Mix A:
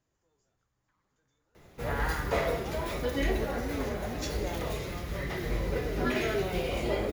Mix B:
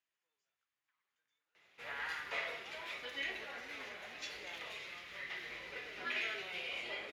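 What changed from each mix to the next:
master: add resonant band-pass 2,600 Hz, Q 1.8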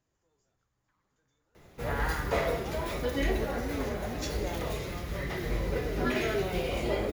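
master: remove resonant band-pass 2,600 Hz, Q 1.8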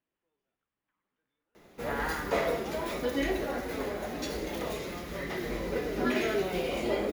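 speech: add transistor ladder low-pass 3,400 Hz, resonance 45%
master: add low shelf with overshoot 160 Hz −8.5 dB, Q 1.5

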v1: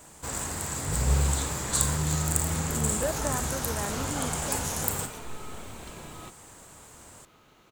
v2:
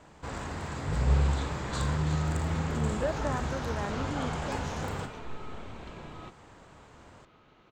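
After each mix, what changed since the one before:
master: add high-frequency loss of the air 200 metres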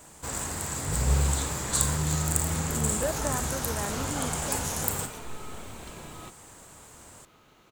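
master: remove high-frequency loss of the air 200 metres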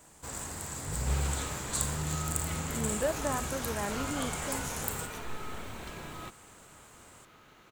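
first sound −6.5 dB
second sound: add parametric band 1,700 Hz +5 dB 0.85 octaves

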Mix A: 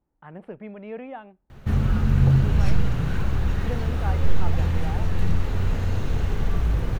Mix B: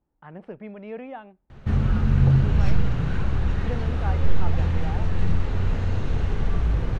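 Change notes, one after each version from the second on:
speech: add parametric band 5,500 Hz +8 dB 0.85 octaves
master: add high-frequency loss of the air 74 metres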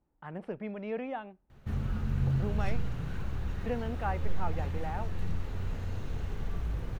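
background −11.5 dB
master: remove high-frequency loss of the air 74 metres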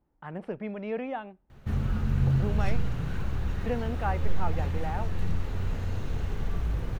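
speech +3.0 dB
background +4.5 dB

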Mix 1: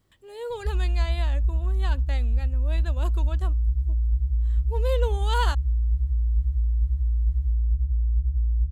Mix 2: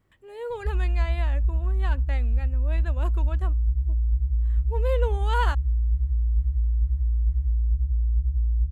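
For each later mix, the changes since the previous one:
speech: add high shelf with overshoot 2,900 Hz −6.5 dB, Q 1.5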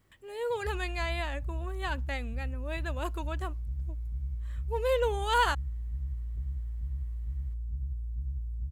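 background: add high-pass filter 84 Hz 24 dB per octave
master: add high-shelf EQ 2,700 Hz +8 dB

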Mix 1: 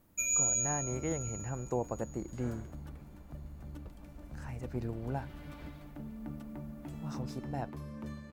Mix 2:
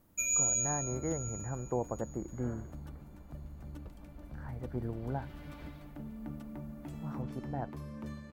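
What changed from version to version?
speech: add Savitzky-Golay smoothing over 41 samples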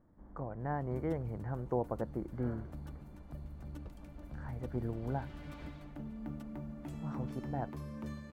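first sound: muted

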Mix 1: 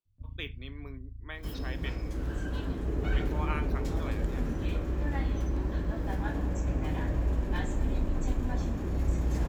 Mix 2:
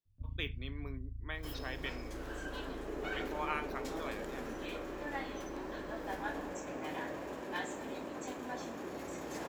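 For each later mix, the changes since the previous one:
second sound: add high-pass filter 410 Hz 12 dB per octave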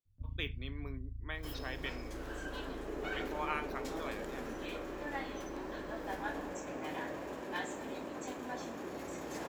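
nothing changed

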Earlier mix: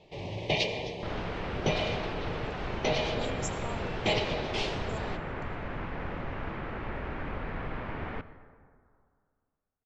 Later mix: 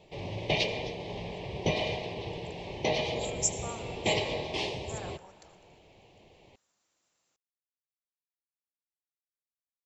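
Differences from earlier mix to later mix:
speech: add spectral tilt +4 dB per octave
second sound: muted

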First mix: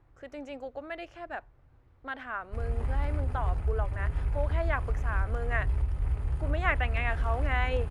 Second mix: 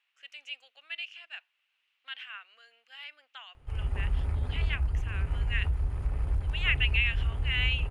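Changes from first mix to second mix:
speech: add high-pass with resonance 2,800 Hz, resonance Q 5.9
background: entry +1.15 s

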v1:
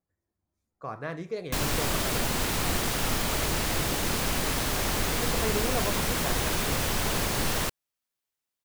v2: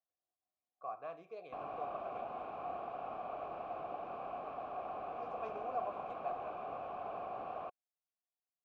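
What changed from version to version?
background: add low-pass filter 1,200 Hz 12 dB per octave
master: add formant filter a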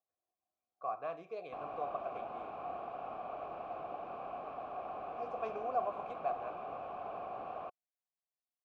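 speech +5.0 dB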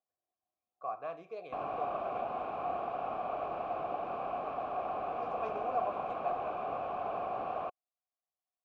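background +6.5 dB

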